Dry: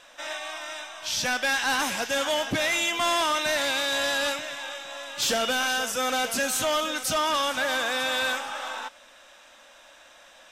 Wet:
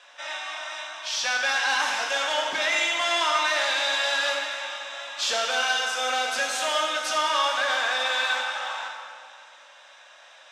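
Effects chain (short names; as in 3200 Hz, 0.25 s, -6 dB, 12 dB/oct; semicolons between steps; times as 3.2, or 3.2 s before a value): BPF 660–6000 Hz; plate-style reverb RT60 2 s, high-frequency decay 0.8×, pre-delay 0 ms, DRR 0.5 dB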